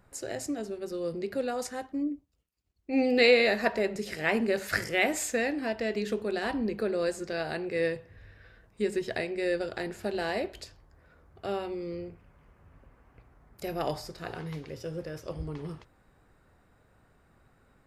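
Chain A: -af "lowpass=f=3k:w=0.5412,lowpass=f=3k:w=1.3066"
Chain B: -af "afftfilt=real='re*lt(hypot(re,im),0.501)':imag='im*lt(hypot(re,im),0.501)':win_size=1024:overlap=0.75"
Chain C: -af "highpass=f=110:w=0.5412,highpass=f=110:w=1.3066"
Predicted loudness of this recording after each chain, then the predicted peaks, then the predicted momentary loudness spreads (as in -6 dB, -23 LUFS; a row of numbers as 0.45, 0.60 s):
-31.0, -32.0, -30.5 LUFS; -9.5, -11.0, -9.0 dBFS; 13, 12, 13 LU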